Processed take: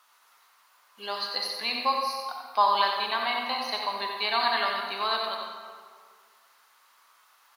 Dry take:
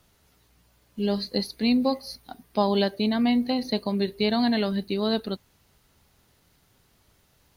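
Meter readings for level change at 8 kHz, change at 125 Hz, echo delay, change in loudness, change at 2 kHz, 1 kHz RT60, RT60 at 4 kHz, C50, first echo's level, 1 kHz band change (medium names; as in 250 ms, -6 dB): no reading, under -25 dB, 91 ms, -2.0 dB, +6.0 dB, 1.9 s, 1.1 s, 1.0 dB, -6.0 dB, +7.5 dB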